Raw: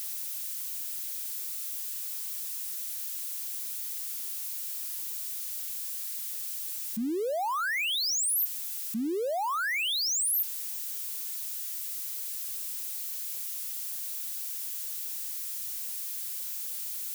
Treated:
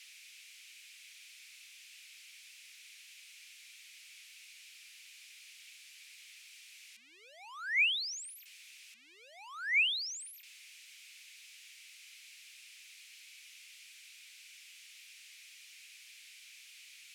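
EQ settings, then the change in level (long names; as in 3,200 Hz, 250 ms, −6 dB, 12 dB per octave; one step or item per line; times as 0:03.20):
four-pole ladder band-pass 2,600 Hz, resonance 65%
+5.5 dB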